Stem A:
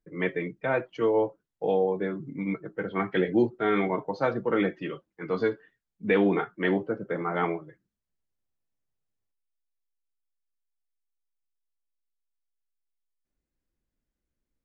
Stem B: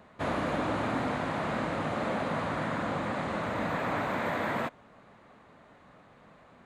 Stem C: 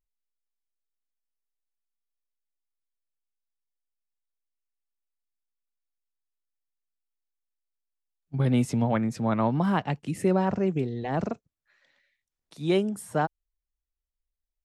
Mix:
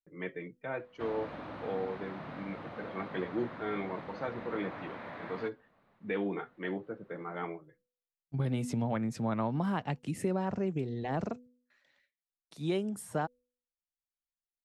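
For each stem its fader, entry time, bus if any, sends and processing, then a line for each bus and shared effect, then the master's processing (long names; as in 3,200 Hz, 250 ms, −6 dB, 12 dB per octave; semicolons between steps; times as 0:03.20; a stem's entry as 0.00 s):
−11.0 dB, 0.00 s, no send, no processing
−2.0 dB, 0.80 s, no send, Savitzky-Golay smoothing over 15 samples; automatic ducking −11 dB, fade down 1.15 s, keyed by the first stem
−3.5 dB, 0.00 s, no send, downward compressor 2.5 to 1, threshold −26 dBFS, peak gain reduction 5.5 dB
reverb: not used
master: noise gate with hold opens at −59 dBFS; hum removal 247 Hz, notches 2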